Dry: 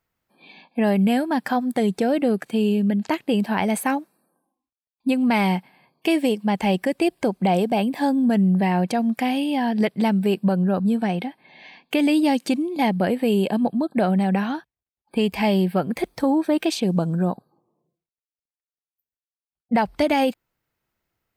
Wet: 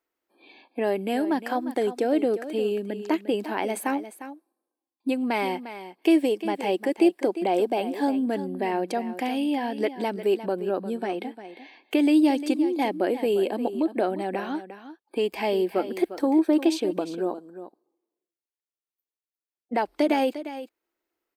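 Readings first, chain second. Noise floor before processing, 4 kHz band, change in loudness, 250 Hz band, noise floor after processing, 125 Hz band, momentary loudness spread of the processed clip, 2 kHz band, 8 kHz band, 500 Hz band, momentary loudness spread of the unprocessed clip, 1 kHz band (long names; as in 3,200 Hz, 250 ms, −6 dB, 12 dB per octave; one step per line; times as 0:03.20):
below −85 dBFS, −5.0 dB, −4.0 dB, −5.0 dB, below −85 dBFS, below −15 dB, 13 LU, −5.0 dB, −5.5 dB, −1.0 dB, 5 LU, −4.0 dB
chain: low shelf with overshoot 220 Hz −14 dB, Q 3
single-tap delay 352 ms −12.5 dB
level −5.5 dB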